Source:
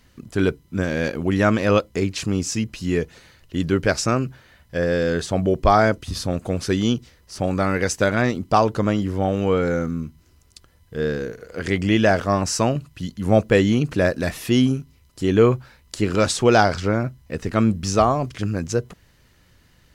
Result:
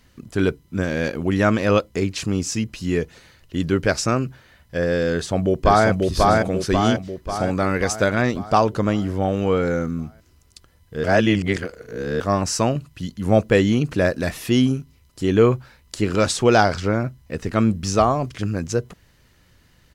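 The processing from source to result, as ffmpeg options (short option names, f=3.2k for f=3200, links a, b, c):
-filter_complex "[0:a]asplit=2[a][b];[b]afade=t=in:st=5.11:d=0.01,afade=t=out:st=5.88:d=0.01,aecho=0:1:540|1080|1620|2160|2700|3240|3780|4320:0.841395|0.462767|0.254522|0.139987|0.0769929|0.0423461|0.0232904|0.0128097[c];[a][c]amix=inputs=2:normalize=0,asplit=3[d][e][f];[d]atrim=end=11.042[g];[e]atrim=start=11.038:end=12.202,asetpts=PTS-STARTPTS,areverse[h];[f]atrim=start=12.198[i];[g][h]acrossfade=d=0.004:c1=hsin:c2=hsin[j];[j][i]acrossfade=d=0.004:c1=hsin:c2=hsin"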